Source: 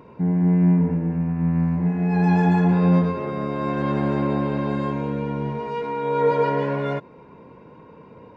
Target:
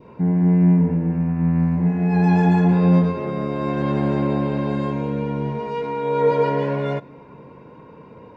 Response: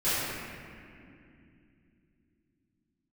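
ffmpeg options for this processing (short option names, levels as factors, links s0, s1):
-filter_complex "[0:a]adynamicequalizer=threshold=0.0141:dfrequency=1300:dqfactor=1.2:tfrequency=1300:tqfactor=1.2:attack=5:release=100:ratio=0.375:range=2:mode=cutabove:tftype=bell,asplit=2[s0][s1];[1:a]atrim=start_sample=2205[s2];[s1][s2]afir=irnorm=-1:irlink=0,volume=0.0158[s3];[s0][s3]amix=inputs=2:normalize=0,volume=1.26"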